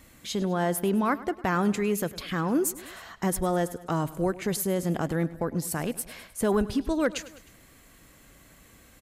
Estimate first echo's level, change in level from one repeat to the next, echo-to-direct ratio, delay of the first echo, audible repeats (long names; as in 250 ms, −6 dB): −18.0 dB, −4.5 dB, −16.5 dB, 103 ms, 3